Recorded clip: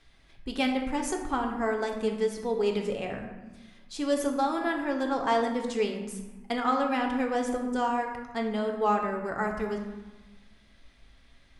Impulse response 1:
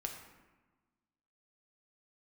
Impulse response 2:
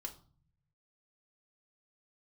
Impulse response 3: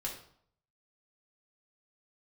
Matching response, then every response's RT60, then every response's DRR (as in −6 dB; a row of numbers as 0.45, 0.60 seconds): 1; 1.2, 0.45, 0.60 seconds; 2.0, 2.5, −3.0 decibels